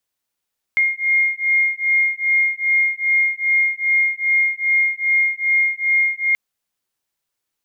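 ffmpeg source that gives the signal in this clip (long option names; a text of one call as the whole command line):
ffmpeg -f lavfi -i "aevalsrc='0.126*(sin(2*PI*2130*t)+sin(2*PI*2132.5*t))':duration=5.58:sample_rate=44100" out.wav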